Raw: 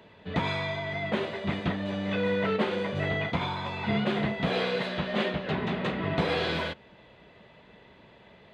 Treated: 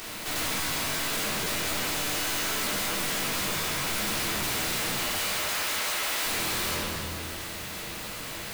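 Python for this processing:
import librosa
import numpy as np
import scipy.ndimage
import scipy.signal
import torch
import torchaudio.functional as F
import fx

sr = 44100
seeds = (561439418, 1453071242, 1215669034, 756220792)

p1 = fx.spec_flatten(x, sr, power=0.14)
p2 = fx.highpass(p1, sr, hz=570.0, slope=12, at=(5.13, 6.24))
p3 = fx.room_shoebox(p2, sr, seeds[0], volume_m3=350.0, walls='mixed', distance_m=3.5)
p4 = 10.0 ** (-28.5 / 20.0) * np.tanh(p3 / 10.0 ** (-28.5 / 20.0))
p5 = p4 + fx.echo_feedback(p4, sr, ms=203, feedback_pct=52, wet_db=-10.0, dry=0)
p6 = fx.buffer_crackle(p5, sr, first_s=0.48, period_s=0.12, block=512, kind='repeat')
y = fx.env_flatten(p6, sr, amount_pct=50)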